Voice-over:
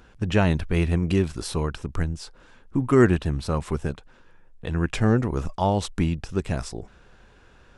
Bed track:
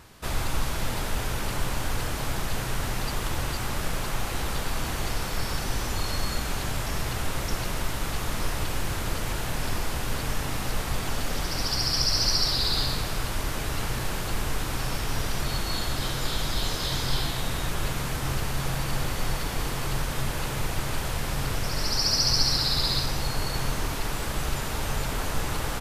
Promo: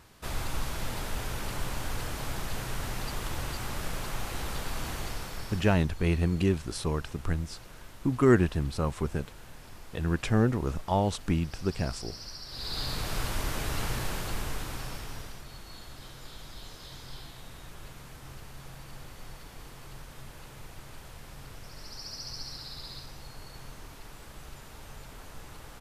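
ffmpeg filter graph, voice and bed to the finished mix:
-filter_complex "[0:a]adelay=5300,volume=-4dB[a];[1:a]volume=11.5dB,afade=t=out:st=4.91:d=0.96:silence=0.199526,afade=t=in:st=12.48:d=0.69:silence=0.141254,afade=t=out:st=13.9:d=1.53:silence=0.177828[b];[a][b]amix=inputs=2:normalize=0"

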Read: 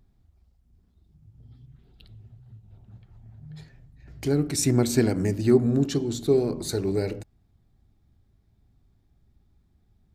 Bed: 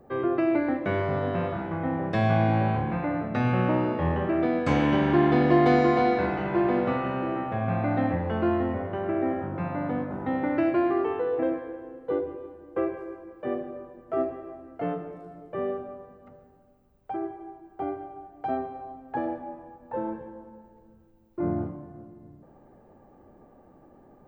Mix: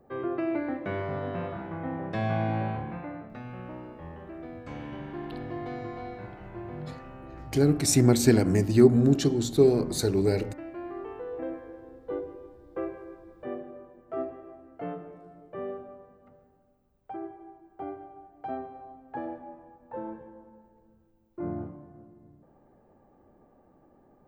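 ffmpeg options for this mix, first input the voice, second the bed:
-filter_complex "[0:a]adelay=3300,volume=1.5dB[a];[1:a]volume=5.5dB,afade=t=out:st=2.61:d=0.83:silence=0.266073,afade=t=in:st=10.69:d=1.19:silence=0.281838[b];[a][b]amix=inputs=2:normalize=0"

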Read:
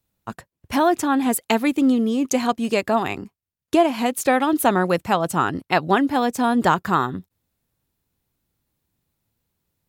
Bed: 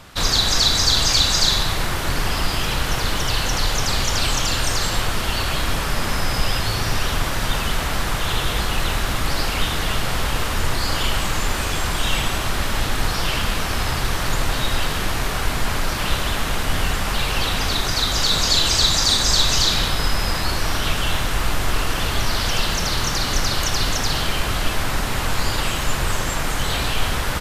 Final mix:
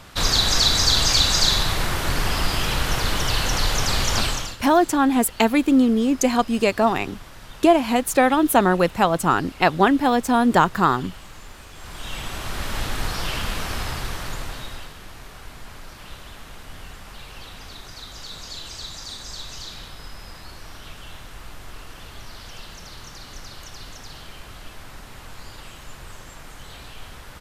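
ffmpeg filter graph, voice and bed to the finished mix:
-filter_complex "[0:a]adelay=3900,volume=1.5dB[a];[1:a]volume=14dB,afade=t=out:st=4.18:d=0.39:silence=0.112202,afade=t=in:st=11.74:d=1.05:silence=0.177828,afade=t=out:st=13.7:d=1.24:silence=0.211349[b];[a][b]amix=inputs=2:normalize=0"

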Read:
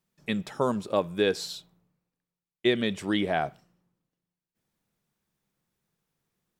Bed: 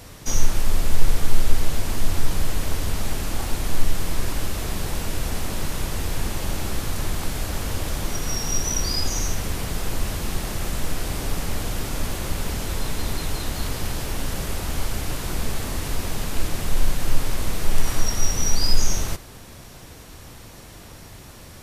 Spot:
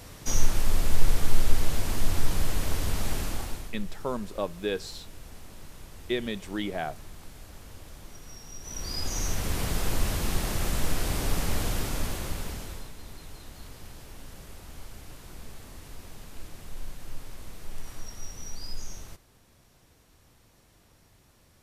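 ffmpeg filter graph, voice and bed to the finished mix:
-filter_complex "[0:a]adelay=3450,volume=-5.5dB[a];[1:a]volume=14.5dB,afade=t=out:st=3.19:d=0.54:silence=0.158489,afade=t=in:st=8.6:d=1.04:silence=0.125893,afade=t=out:st=11.65:d=1.27:silence=0.149624[b];[a][b]amix=inputs=2:normalize=0"

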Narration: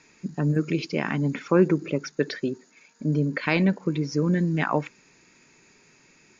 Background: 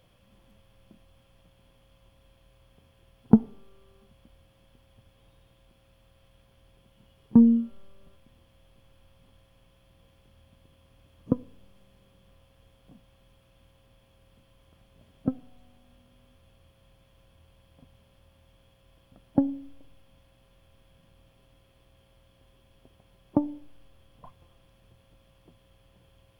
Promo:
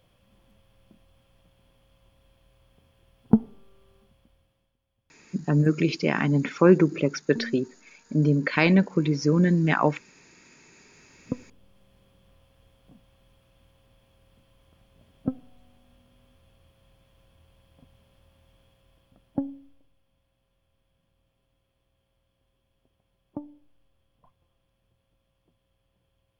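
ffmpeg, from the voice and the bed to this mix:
-filter_complex "[0:a]adelay=5100,volume=2.5dB[a];[1:a]volume=17dB,afade=t=out:st=3.96:d=0.8:silence=0.133352,afade=t=in:st=10.67:d=1.32:silence=0.11885,afade=t=out:st=18.58:d=1.33:silence=0.251189[b];[a][b]amix=inputs=2:normalize=0"

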